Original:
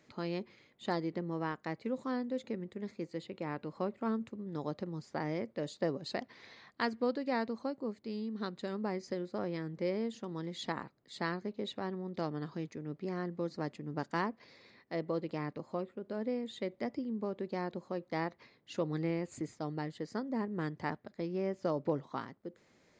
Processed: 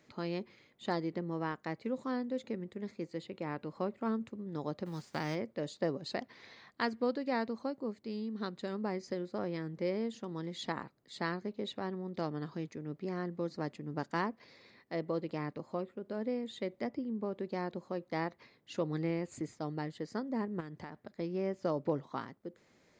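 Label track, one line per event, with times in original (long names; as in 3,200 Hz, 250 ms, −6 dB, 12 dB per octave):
4.850000	5.340000	spectral envelope flattened exponent 0.6
16.870000	17.320000	high-shelf EQ 5,200 Hz −10 dB
20.600000	21.040000	downward compressor 12 to 1, threshold −39 dBFS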